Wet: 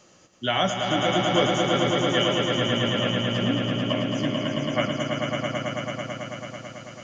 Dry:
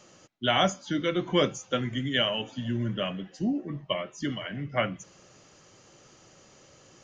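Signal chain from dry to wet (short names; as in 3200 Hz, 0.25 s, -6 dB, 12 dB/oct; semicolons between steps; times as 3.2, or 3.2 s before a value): swelling echo 0.11 s, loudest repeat 5, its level -5 dB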